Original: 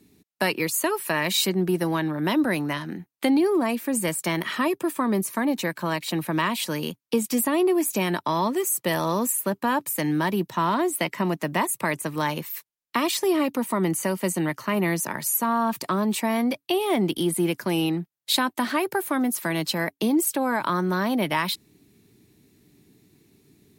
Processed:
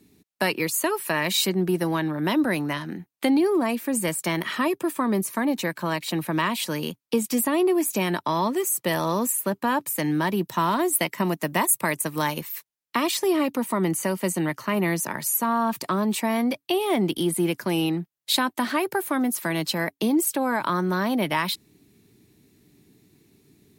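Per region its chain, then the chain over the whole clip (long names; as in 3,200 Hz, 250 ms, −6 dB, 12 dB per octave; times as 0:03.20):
0:10.47–0:12.42: high-shelf EQ 7,200 Hz +10 dB + transient designer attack +1 dB, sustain −4 dB
whole clip: no processing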